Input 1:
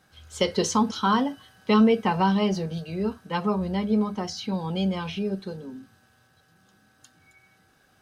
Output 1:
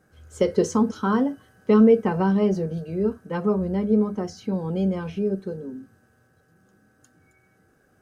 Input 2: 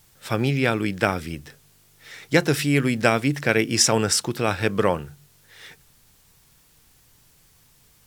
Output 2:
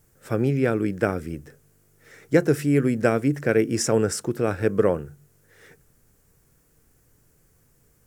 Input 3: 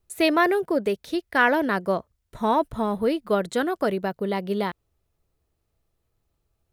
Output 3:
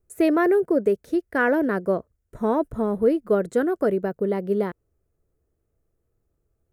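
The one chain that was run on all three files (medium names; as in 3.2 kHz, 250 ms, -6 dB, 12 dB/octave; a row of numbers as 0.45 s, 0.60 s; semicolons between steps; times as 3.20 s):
FFT filter 190 Hz 0 dB, 460 Hz +4 dB, 910 Hz -8 dB, 1.5 kHz -3 dB, 3.7 kHz -17 dB, 6.9 kHz -6 dB; normalise loudness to -23 LUFS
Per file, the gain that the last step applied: +2.0 dB, -0.5 dB, +1.0 dB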